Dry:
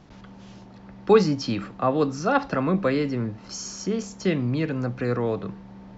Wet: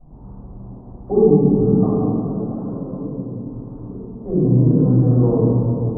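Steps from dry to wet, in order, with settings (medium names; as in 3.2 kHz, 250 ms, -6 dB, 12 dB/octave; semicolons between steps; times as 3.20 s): low-pass that closes with the level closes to 500 Hz, closed at -17 dBFS; elliptic low-pass 1 kHz, stop band 80 dB; bass shelf 200 Hz +11 dB; 1.84–4.24 s: compression 6:1, threshold -33 dBFS, peak gain reduction 18 dB; reverberation RT60 3.2 s, pre-delay 4 ms, DRR -18 dB; trim -18 dB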